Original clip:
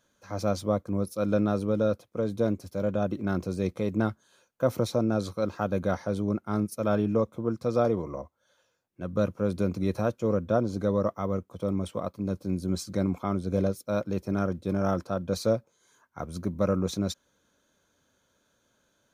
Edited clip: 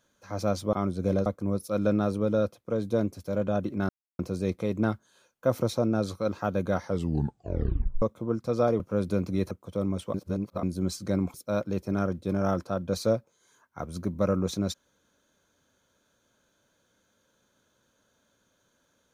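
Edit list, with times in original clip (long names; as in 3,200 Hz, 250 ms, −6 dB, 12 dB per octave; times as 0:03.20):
0:03.36: splice in silence 0.30 s
0:06.03: tape stop 1.16 s
0:07.97–0:09.28: remove
0:09.99–0:11.38: remove
0:12.01–0:12.50: reverse
0:13.21–0:13.74: move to 0:00.73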